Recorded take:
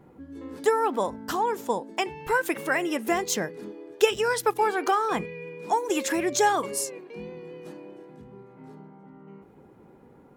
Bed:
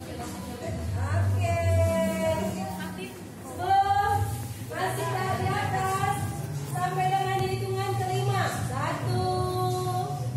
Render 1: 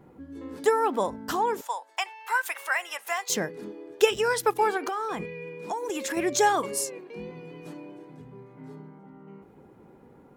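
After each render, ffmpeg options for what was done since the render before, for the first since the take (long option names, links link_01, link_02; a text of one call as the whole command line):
ffmpeg -i in.wav -filter_complex "[0:a]asettb=1/sr,asplit=3[link_01][link_02][link_03];[link_01]atrim=end=1.614[link_04];[link_02]atrim=start=1.61:end=3.3,asetpts=PTS-STARTPTS,afade=type=in:duration=0.004:curve=qsin,afade=type=out:start_time=1.686:duration=0.004:curve=qsin,highpass=frequency=780:width=0.5412,highpass=frequency=780:width=1.3066[link_05];[link_03]atrim=start=3.296[link_06];[link_04][link_05]acrossfade=duration=0.004:curve1=hsin:curve2=qsin[link_07];[link_07][link_06]acrossfade=duration=0.004:curve1=qsin:curve2=hsin,asettb=1/sr,asplit=3[link_08][link_09][link_10];[link_08]atrim=end=4.774[link_11];[link_09]atrim=start=4.77:end=6.17,asetpts=PTS-STARTPTS,afade=type=in:duration=0.004:curve=qsin,afade=type=out:start_time=1.396:duration=0.004:curve=qsin,acompressor=threshold=-27dB:ratio=6:attack=3.2:release=140:knee=1:detection=peak[link_12];[link_10]atrim=start=6.166[link_13];[link_11][link_12]acrossfade=duration=0.004:curve1=hsin:curve2=qsin[link_14];[link_14][link_13]acrossfade=duration=0.004:curve1=qsin:curve2=hsin,asettb=1/sr,asplit=3[link_15][link_16][link_17];[link_15]atrim=end=7.304[link_18];[link_16]atrim=start=7.3:end=8.99,asetpts=PTS-STARTPTS,afade=type=in:duration=0.004:curve=qsin,afade=type=out:start_time=1.686:duration=0.004:curve=qsin,aecho=1:1:6.9:0.65,atrim=end_sample=74529[link_19];[link_17]atrim=start=8.986[link_20];[link_18][link_19]acrossfade=duration=0.004:curve1=hsin:curve2=qsin[link_21];[link_21][link_20]acrossfade=duration=0.004:curve1=qsin:curve2=hsin" out.wav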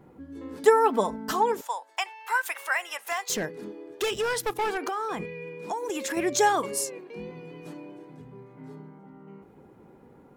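ffmpeg -i in.wav -filter_complex "[0:a]asettb=1/sr,asplit=3[link_01][link_02][link_03];[link_01]atrim=end=0.634[link_04];[link_02]atrim=start=0.63:end=1.52,asetpts=PTS-STARTPTS,afade=type=in:duration=0.004:curve=qsin,afade=type=out:start_time=0.886:duration=0.004:curve=qsin,aecho=1:1:4.6:0.65,atrim=end_sample=39249[link_05];[link_03]atrim=start=1.516[link_06];[link_04][link_05]acrossfade=duration=0.004:curve1=hsin:curve2=qsin[link_07];[link_07][link_06]acrossfade=duration=0.004:curve1=qsin:curve2=hsin,asettb=1/sr,asplit=3[link_08][link_09][link_10];[link_08]atrim=end=2.974[link_11];[link_09]atrim=start=2.97:end=4.78,asetpts=PTS-STARTPTS,afade=type=in:duration=0.004:curve=qsin,afade=type=out:start_time=1.806:duration=0.004:curve=qsin,asoftclip=type=hard:threshold=-23.5dB[link_12];[link_10]atrim=start=4.776[link_13];[link_11][link_12]acrossfade=duration=0.004:curve1=hsin:curve2=qsin[link_14];[link_14][link_13]acrossfade=duration=0.004:curve1=qsin:curve2=hsin" out.wav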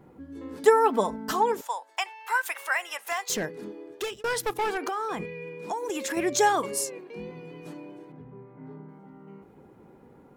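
ffmpeg -i in.wav -filter_complex "[0:a]asettb=1/sr,asplit=3[link_01][link_02][link_03];[link_01]atrim=end=8.124[link_04];[link_02]atrim=start=8.12:end=8.89,asetpts=PTS-STARTPTS,afade=type=in:duration=0.004:curve=qsin,afade=type=out:start_time=0.766:duration=0.004:curve=qsin,lowpass=1900[link_05];[link_03]atrim=start=8.886[link_06];[link_04][link_05]acrossfade=duration=0.004:curve1=hsin:curve2=qsin[link_07];[link_07][link_06]acrossfade=duration=0.004:curve1=qsin:curve2=hsin,asplit=2[link_08][link_09];[link_08]atrim=end=4.24,asetpts=PTS-STARTPTS,afade=type=out:start_time=3.78:duration=0.46:curve=qsin[link_10];[link_09]atrim=start=4.24,asetpts=PTS-STARTPTS,afade=type=in:duration=0.004:curve=hsin[link_11];[link_10][link_11]concat=n=2:v=0:a=1" out.wav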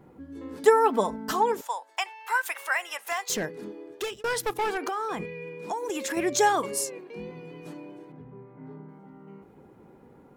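ffmpeg -i in.wav -af anull out.wav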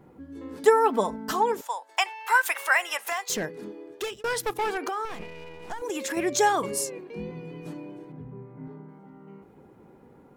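ffmpeg -i in.wav -filter_complex "[0:a]asettb=1/sr,asplit=3[link_01][link_02][link_03];[link_01]atrim=end=1.894[link_04];[link_02]atrim=start=1.89:end=3.1,asetpts=PTS-STARTPTS,afade=type=in:duration=0.004:curve=qsin,afade=type=out:start_time=1.206:duration=0.004:curve=qsin,acontrast=30[link_05];[link_03]atrim=start=3.096[link_06];[link_04][link_05]acrossfade=duration=0.004:curve1=hsin:curve2=qsin[link_07];[link_07][link_06]acrossfade=duration=0.004:curve1=qsin:curve2=hsin,asettb=1/sr,asplit=3[link_08][link_09][link_10];[link_08]atrim=end=5.054[link_11];[link_09]atrim=start=5.05:end=5.82,asetpts=PTS-STARTPTS,afade=type=in:duration=0.004:curve=qsin,afade=type=out:start_time=0.766:duration=0.004:curve=qsin,aeval=exprs='max(val(0),0)':channel_layout=same[link_12];[link_10]atrim=start=5.816[link_13];[link_11][link_12]acrossfade=duration=0.004:curve1=hsin:curve2=qsin[link_14];[link_14][link_13]acrossfade=duration=0.004:curve1=qsin:curve2=hsin,asettb=1/sr,asplit=3[link_15][link_16][link_17];[link_15]atrim=end=6.614[link_18];[link_16]atrim=start=6.61:end=8.68,asetpts=PTS-STARTPTS,afade=type=in:duration=0.004:curve=qsin,afade=type=out:start_time=2.066:duration=0.004:curve=qsin,lowshelf=frequency=220:gain=8.5[link_19];[link_17]atrim=start=8.676[link_20];[link_18][link_19]acrossfade=duration=0.004:curve1=hsin:curve2=qsin[link_21];[link_21][link_20]acrossfade=duration=0.004:curve1=qsin:curve2=hsin" out.wav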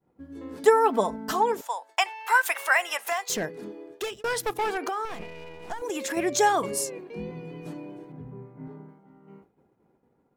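ffmpeg -i in.wav -af "agate=range=-33dB:threshold=-42dB:ratio=3:detection=peak,equalizer=frequency=680:width_type=o:width=0.22:gain=4.5" out.wav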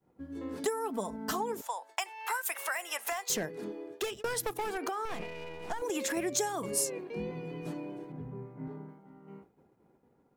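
ffmpeg -i in.wav -filter_complex "[0:a]acrossover=split=290|6900[link_01][link_02][link_03];[link_01]alimiter=level_in=10dB:limit=-24dB:level=0:latency=1:release=492,volume=-10dB[link_04];[link_02]acompressor=threshold=-32dB:ratio=12[link_05];[link_04][link_05][link_03]amix=inputs=3:normalize=0" out.wav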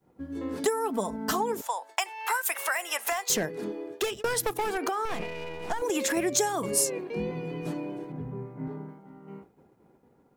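ffmpeg -i in.wav -af "volume=5.5dB" out.wav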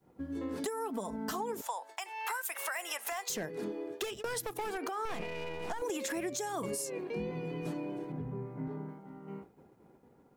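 ffmpeg -i in.wav -af "alimiter=limit=-21dB:level=0:latency=1:release=184,acompressor=threshold=-37dB:ratio=2" out.wav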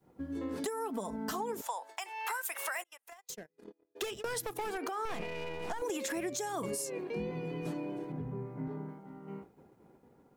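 ffmpeg -i in.wav -filter_complex "[0:a]asplit=3[link_01][link_02][link_03];[link_01]afade=type=out:start_time=2.82:duration=0.02[link_04];[link_02]agate=range=-42dB:threshold=-35dB:ratio=16:release=100:detection=peak,afade=type=in:start_time=2.82:duration=0.02,afade=type=out:start_time=3.95:duration=0.02[link_05];[link_03]afade=type=in:start_time=3.95:duration=0.02[link_06];[link_04][link_05][link_06]amix=inputs=3:normalize=0" out.wav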